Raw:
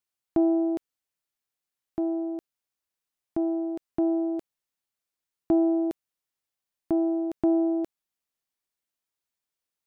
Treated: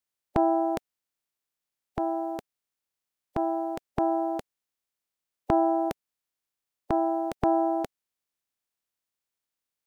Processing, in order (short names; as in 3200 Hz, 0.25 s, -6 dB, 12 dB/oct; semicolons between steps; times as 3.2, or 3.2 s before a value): spectral limiter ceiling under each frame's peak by 24 dB